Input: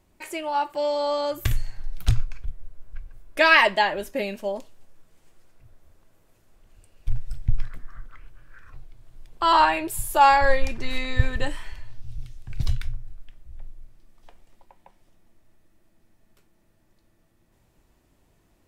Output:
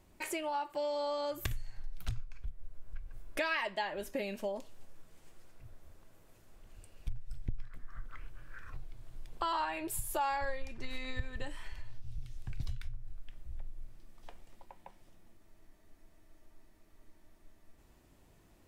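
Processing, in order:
downward compressor 4 to 1, threshold −35 dBFS, peak gain reduction 20.5 dB
frozen spectrum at 0:15.39, 2.38 s

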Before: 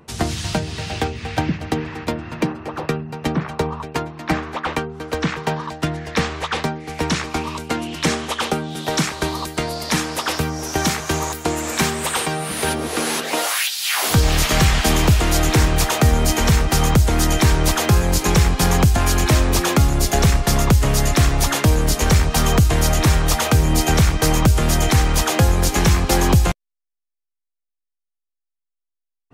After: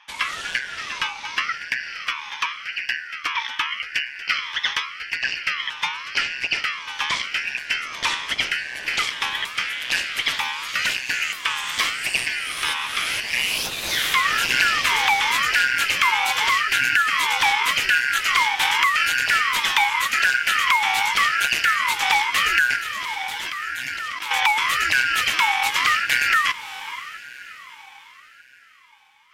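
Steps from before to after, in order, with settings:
band-splitting scrambler in four parts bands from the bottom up 3142
parametric band 2,800 Hz +13.5 dB 0.66 octaves
0:22.76–0:24.31: output level in coarse steps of 21 dB
on a send: feedback delay with all-pass diffusion 590 ms, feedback 47%, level −14.5 dB
on the sum: ring modulator whose carrier an LFO sweeps 400 Hz, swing 85%, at 0.86 Hz
level −5.5 dB

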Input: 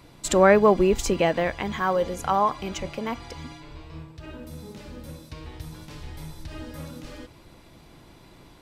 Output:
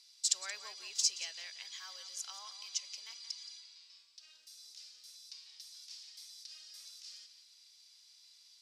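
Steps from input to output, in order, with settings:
four-pole ladder band-pass 5,600 Hz, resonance 60%
tape delay 175 ms, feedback 35%, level −11 dB, low-pass 5,300 Hz
level +9 dB

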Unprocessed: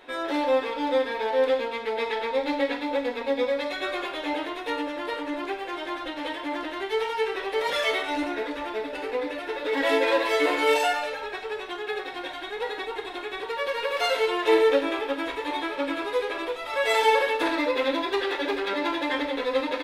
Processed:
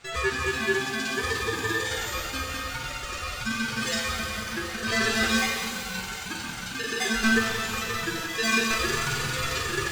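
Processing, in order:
ring modulation 330 Hz
wrong playback speed 7.5 ips tape played at 15 ips
reverb with rising layers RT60 2.1 s, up +12 semitones, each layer −8 dB, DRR 2 dB
level −1 dB

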